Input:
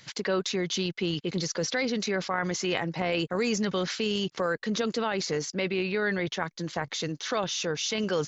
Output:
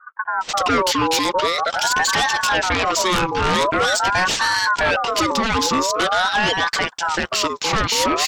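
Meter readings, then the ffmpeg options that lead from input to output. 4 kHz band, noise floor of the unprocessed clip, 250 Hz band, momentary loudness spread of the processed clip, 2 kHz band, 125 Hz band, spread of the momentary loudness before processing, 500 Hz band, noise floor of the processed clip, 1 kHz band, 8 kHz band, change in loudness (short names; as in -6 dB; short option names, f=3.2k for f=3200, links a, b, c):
+11.5 dB, -55 dBFS, +4.0 dB, 3 LU, +13.5 dB, +3.5 dB, 3 LU, +6.0 dB, -40 dBFS, +17.5 dB, n/a, +11.0 dB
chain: -filter_complex "[0:a]acrossover=split=300[a][b];[b]adelay=410[c];[a][c]amix=inputs=2:normalize=0,aeval=exprs='0.224*sin(PI/2*3.55*val(0)/0.224)':c=same,aeval=exprs='val(0)*sin(2*PI*1000*n/s+1000*0.35/0.45*sin(2*PI*0.45*n/s))':c=same,volume=2dB"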